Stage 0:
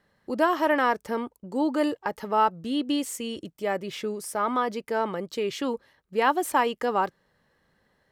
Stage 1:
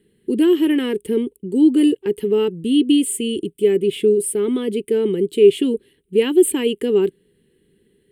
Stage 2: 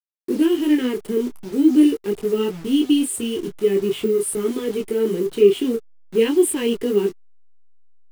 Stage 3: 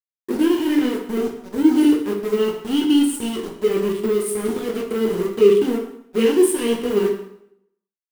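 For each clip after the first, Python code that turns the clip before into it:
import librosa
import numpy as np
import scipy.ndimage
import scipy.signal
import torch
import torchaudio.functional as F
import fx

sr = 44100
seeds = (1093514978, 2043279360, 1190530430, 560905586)

y1 = fx.curve_eq(x, sr, hz=(110.0, 190.0, 280.0, 410.0, 600.0, 1200.0, 3000.0, 5800.0, 9100.0, 13000.0), db=(0, 6, 6, 15, -20, -21, 5, -18, 12, 0))
y1 = y1 * librosa.db_to_amplitude(5.0)
y2 = fx.delta_hold(y1, sr, step_db=-32.5)
y2 = fx.detune_double(y2, sr, cents=16)
y2 = y2 * librosa.db_to_amplitude(2.0)
y3 = np.sign(y2) * np.maximum(np.abs(y2) - 10.0 ** (-30.0 / 20.0), 0.0)
y3 = fx.rev_plate(y3, sr, seeds[0], rt60_s=0.74, hf_ratio=0.85, predelay_ms=0, drr_db=1.5)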